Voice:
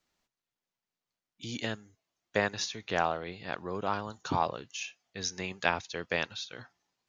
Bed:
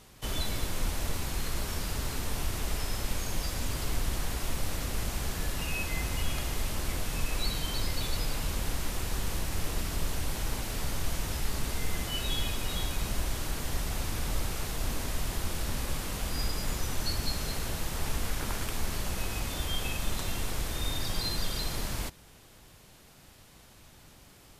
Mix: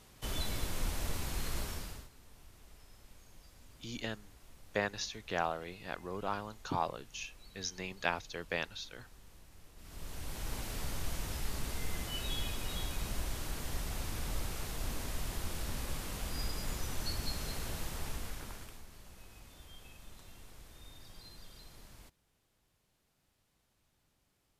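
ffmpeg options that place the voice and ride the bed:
ffmpeg -i stem1.wav -i stem2.wav -filter_complex "[0:a]adelay=2400,volume=-5dB[link_01];[1:a]volume=15dB,afade=type=out:start_time=1.59:duration=0.5:silence=0.0891251,afade=type=in:start_time=9.76:duration=0.84:silence=0.105925,afade=type=out:start_time=17.82:duration=1.03:silence=0.16788[link_02];[link_01][link_02]amix=inputs=2:normalize=0" out.wav

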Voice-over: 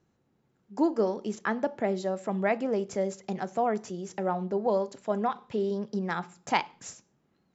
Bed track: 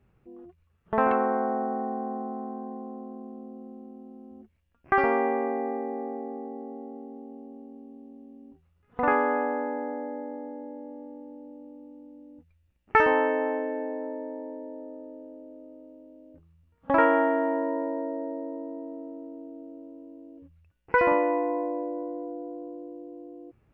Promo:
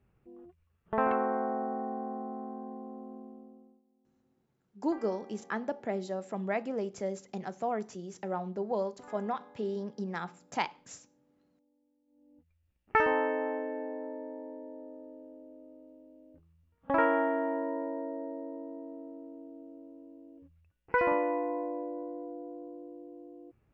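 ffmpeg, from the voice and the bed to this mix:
ffmpeg -i stem1.wav -i stem2.wav -filter_complex "[0:a]adelay=4050,volume=-5.5dB[link_01];[1:a]volume=17.5dB,afade=type=out:start_time=3.15:duration=0.67:silence=0.0707946,afade=type=in:start_time=12.06:duration=0.69:silence=0.0749894[link_02];[link_01][link_02]amix=inputs=2:normalize=0" out.wav

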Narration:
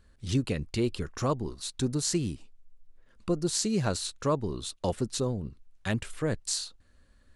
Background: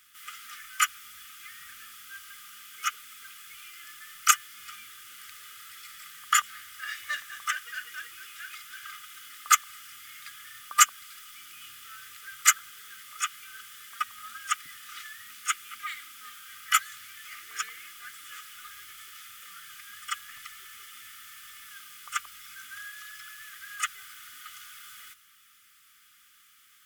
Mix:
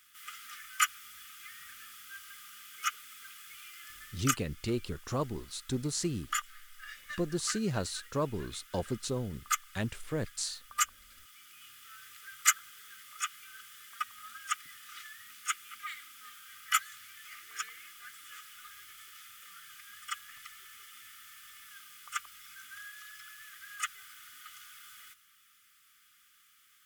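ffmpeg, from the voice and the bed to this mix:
ffmpeg -i stem1.wav -i stem2.wav -filter_complex "[0:a]adelay=3900,volume=-4.5dB[link_01];[1:a]volume=2.5dB,afade=type=out:start_time=3.99:duration=0.33:silence=0.421697,afade=type=in:start_time=11.03:duration=1.14:silence=0.530884[link_02];[link_01][link_02]amix=inputs=2:normalize=0" out.wav

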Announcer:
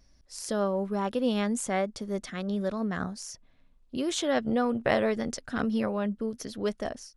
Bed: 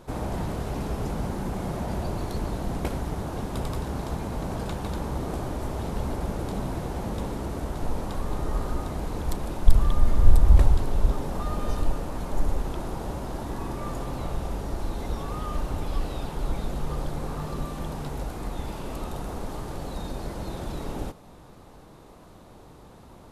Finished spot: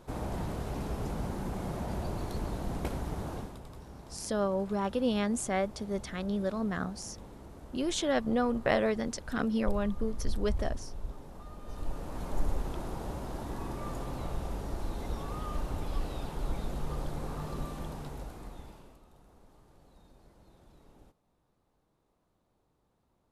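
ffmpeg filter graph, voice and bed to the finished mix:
ffmpeg -i stem1.wav -i stem2.wav -filter_complex "[0:a]adelay=3800,volume=-2dB[link_01];[1:a]volume=6.5dB,afade=type=out:start_time=3.32:duration=0.26:silence=0.251189,afade=type=in:start_time=11.64:duration=0.62:silence=0.251189,afade=type=out:start_time=17.67:duration=1.33:silence=0.0944061[link_02];[link_01][link_02]amix=inputs=2:normalize=0" out.wav

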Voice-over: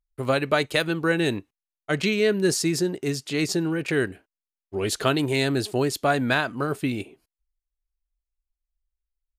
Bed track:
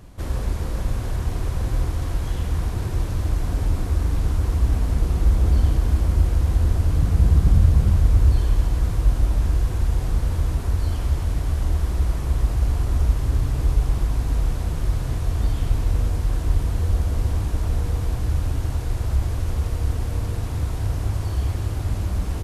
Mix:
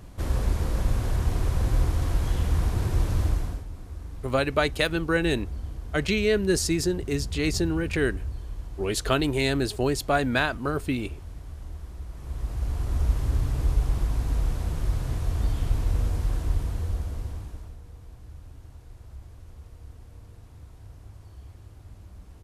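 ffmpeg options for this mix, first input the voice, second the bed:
ffmpeg -i stem1.wav -i stem2.wav -filter_complex "[0:a]adelay=4050,volume=-1.5dB[link_01];[1:a]volume=12.5dB,afade=type=out:start_time=3.22:duration=0.42:silence=0.149624,afade=type=in:start_time=12.11:duration=1.05:silence=0.223872,afade=type=out:start_time=16.26:duration=1.51:silence=0.125893[link_02];[link_01][link_02]amix=inputs=2:normalize=0" out.wav

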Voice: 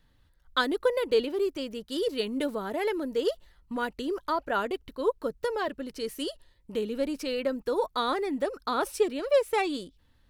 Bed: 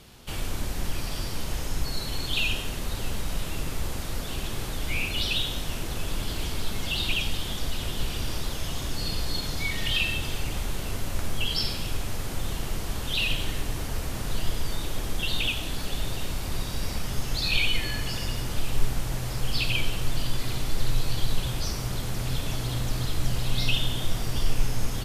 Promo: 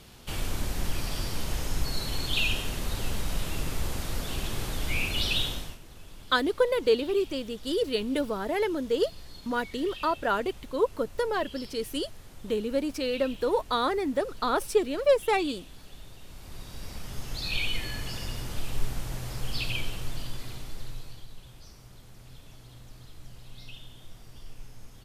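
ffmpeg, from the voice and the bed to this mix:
ffmpeg -i stem1.wav -i stem2.wav -filter_complex "[0:a]adelay=5750,volume=1.5dB[link_01];[1:a]volume=12dB,afade=type=out:start_time=5.44:duration=0.34:silence=0.141254,afade=type=in:start_time=16.22:duration=1.5:silence=0.237137,afade=type=out:start_time=19.68:duration=1.59:silence=0.16788[link_02];[link_01][link_02]amix=inputs=2:normalize=0" out.wav

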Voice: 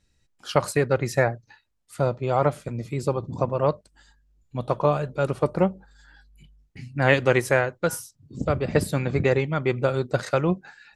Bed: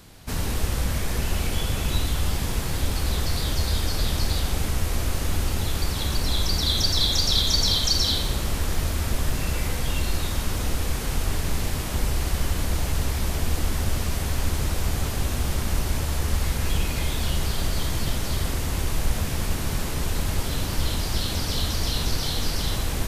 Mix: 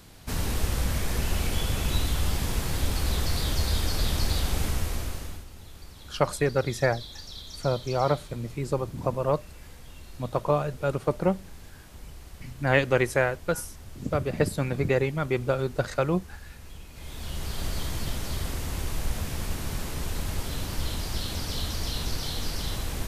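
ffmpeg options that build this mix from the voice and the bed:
ffmpeg -i stem1.wav -i stem2.wav -filter_complex "[0:a]adelay=5650,volume=-3dB[link_01];[1:a]volume=13dB,afade=type=out:start_time=4.66:duration=0.79:silence=0.11885,afade=type=in:start_time=16.92:duration=0.76:silence=0.177828[link_02];[link_01][link_02]amix=inputs=2:normalize=0" out.wav

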